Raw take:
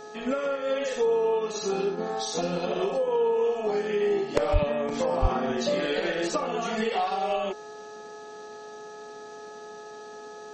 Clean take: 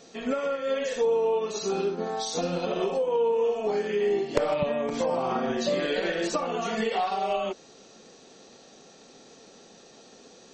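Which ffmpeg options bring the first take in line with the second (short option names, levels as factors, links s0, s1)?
-filter_complex "[0:a]bandreject=f=423.5:t=h:w=4,bandreject=f=847:t=h:w=4,bandreject=f=1270.5:t=h:w=4,bandreject=f=1694:t=h:w=4,bandreject=f=680:w=30,asplit=3[s0][s1][s2];[s0]afade=t=out:st=4.52:d=0.02[s3];[s1]highpass=f=140:w=0.5412,highpass=f=140:w=1.3066,afade=t=in:st=4.52:d=0.02,afade=t=out:st=4.64:d=0.02[s4];[s2]afade=t=in:st=4.64:d=0.02[s5];[s3][s4][s5]amix=inputs=3:normalize=0,asplit=3[s6][s7][s8];[s6]afade=t=out:st=5.21:d=0.02[s9];[s7]highpass=f=140:w=0.5412,highpass=f=140:w=1.3066,afade=t=in:st=5.21:d=0.02,afade=t=out:st=5.33:d=0.02[s10];[s8]afade=t=in:st=5.33:d=0.02[s11];[s9][s10][s11]amix=inputs=3:normalize=0"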